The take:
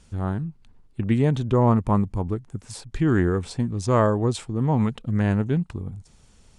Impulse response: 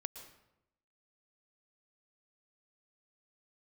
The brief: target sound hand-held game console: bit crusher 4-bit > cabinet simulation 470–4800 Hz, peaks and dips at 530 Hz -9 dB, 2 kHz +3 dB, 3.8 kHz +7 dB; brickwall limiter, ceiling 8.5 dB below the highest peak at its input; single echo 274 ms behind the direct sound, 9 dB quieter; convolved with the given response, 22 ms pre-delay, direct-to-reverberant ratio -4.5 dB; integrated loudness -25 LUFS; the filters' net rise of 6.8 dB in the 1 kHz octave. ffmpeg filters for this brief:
-filter_complex "[0:a]equalizer=f=1000:t=o:g=8.5,alimiter=limit=0.266:level=0:latency=1,aecho=1:1:274:0.355,asplit=2[s0][s1];[1:a]atrim=start_sample=2205,adelay=22[s2];[s1][s2]afir=irnorm=-1:irlink=0,volume=2.24[s3];[s0][s3]amix=inputs=2:normalize=0,acrusher=bits=3:mix=0:aa=0.000001,highpass=470,equalizer=f=530:t=q:w=4:g=-9,equalizer=f=2000:t=q:w=4:g=3,equalizer=f=3800:t=q:w=4:g=7,lowpass=f=4800:w=0.5412,lowpass=f=4800:w=1.3066,volume=0.708"

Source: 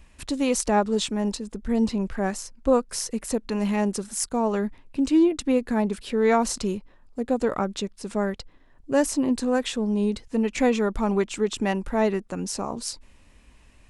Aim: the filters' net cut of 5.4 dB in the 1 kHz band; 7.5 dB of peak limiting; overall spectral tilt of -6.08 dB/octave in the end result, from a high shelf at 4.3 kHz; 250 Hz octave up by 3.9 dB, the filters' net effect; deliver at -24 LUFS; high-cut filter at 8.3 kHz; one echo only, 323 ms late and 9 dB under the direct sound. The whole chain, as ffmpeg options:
-af "lowpass=8300,equalizer=f=250:t=o:g=5,equalizer=f=1000:t=o:g=-7.5,highshelf=f=4300:g=-6.5,alimiter=limit=0.168:level=0:latency=1,aecho=1:1:323:0.355,volume=1.19"

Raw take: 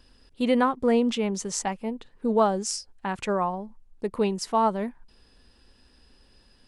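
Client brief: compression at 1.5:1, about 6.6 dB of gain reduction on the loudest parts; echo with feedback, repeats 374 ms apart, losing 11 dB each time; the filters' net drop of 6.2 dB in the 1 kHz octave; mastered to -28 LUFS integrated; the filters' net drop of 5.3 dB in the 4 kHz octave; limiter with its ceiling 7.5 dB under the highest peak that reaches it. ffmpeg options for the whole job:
-af "equalizer=f=1000:t=o:g=-7.5,equalizer=f=4000:t=o:g=-7.5,acompressor=threshold=0.0141:ratio=1.5,alimiter=level_in=1.26:limit=0.0631:level=0:latency=1,volume=0.794,aecho=1:1:374|748|1122:0.282|0.0789|0.0221,volume=2.51"

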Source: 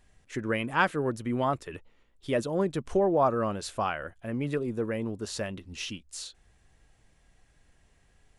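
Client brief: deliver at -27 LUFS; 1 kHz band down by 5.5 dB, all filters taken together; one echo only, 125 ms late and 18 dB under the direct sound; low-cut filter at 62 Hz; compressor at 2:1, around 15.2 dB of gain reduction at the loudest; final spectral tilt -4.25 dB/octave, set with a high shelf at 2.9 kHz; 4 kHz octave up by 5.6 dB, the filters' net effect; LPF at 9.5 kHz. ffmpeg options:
-af "highpass=62,lowpass=9500,equalizer=f=1000:t=o:g=-8,highshelf=f=2900:g=3,equalizer=f=4000:t=o:g=5.5,acompressor=threshold=0.00282:ratio=2,aecho=1:1:125:0.126,volume=7.5"

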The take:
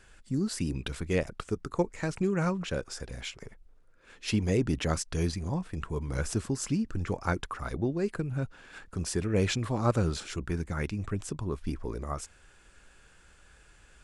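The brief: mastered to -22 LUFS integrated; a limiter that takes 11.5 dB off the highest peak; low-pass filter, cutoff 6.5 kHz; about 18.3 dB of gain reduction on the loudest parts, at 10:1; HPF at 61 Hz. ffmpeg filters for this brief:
-af "highpass=61,lowpass=6500,acompressor=threshold=0.00891:ratio=10,volume=22.4,alimiter=limit=0.266:level=0:latency=1"

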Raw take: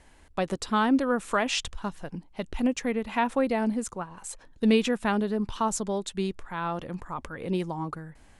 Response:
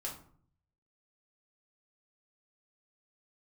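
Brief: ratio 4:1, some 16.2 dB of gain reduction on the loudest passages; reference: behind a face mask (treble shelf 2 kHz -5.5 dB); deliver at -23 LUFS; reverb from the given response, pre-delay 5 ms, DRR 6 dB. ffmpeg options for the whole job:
-filter_complex "[0:a]acompressor=threshold=0.0126:ratio=4,asplit=2[s0][s1];[1:a]atrim=start_sample=2205,adelay=5[s2];[s1][s2]afir=irnorm=-1:irlink=0,volume=0.501[s3];[s0][s3]amix=inputs=2:normalize=0,highshelf=f=2000:g=-5.5,volume=7.08"

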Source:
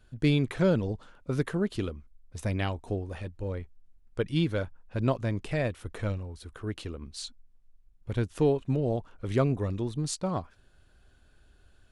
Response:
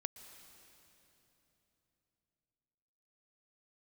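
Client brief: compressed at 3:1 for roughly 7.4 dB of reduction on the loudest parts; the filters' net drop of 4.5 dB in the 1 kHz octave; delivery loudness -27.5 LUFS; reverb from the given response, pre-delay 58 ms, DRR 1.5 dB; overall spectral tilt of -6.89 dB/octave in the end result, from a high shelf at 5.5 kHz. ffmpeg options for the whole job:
-filter_complex "[0:a]equalizer=f=1000:t=o:g=-6.5,highshelf=f=5500:g=-4,acompressor=threshold=0.0316:ratio=3,asplit=2[s0][s1];[1:a]atrim=start_sample=2205,adelay=58[s2];[s1][s2]afir=irnorm=-1:irlink=0,volume=1.12[s3];[s0][s3]amix=inputs=2:normalize=0,volume=2.11"

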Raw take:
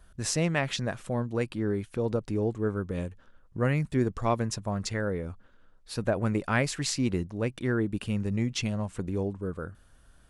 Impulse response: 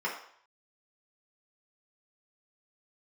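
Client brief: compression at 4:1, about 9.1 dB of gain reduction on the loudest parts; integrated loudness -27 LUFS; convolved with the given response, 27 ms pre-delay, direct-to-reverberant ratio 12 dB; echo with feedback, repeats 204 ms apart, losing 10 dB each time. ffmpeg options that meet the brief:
-filter_complex "[0:a]acompressor=threshold=0.0251:ratio=4,aecho=1:1:204|408|612|816:0.316|0.101|0.0324|0.0104,asplit=2[s0][s1];[1:a]atrim=start_sample=2205,adelay=27[s2];[s1][s2]afir=irnorm=-1:irlink=0,volume=0.106[s3];[s0][s3]amix=inputs=2:normalize=0,volume=2.82"

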